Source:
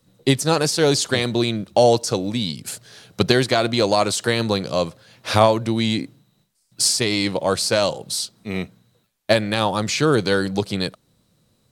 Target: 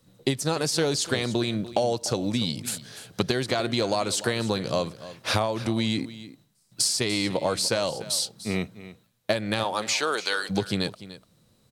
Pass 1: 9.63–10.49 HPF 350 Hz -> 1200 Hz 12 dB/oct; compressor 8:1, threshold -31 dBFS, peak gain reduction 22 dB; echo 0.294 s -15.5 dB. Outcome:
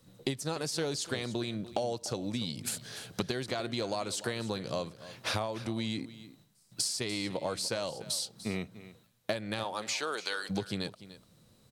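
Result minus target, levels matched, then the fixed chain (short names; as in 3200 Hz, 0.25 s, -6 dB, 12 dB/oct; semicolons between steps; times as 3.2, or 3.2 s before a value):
compressor: peak gain reduction +9 dB
9.63–10.49 HPF 350 Hz -> 1200 Hz 12 dB/oct; compressor 8:1, threshold -21 dBFS, peak gain reduction 13 dB; echo 0.294 s -15.5 dB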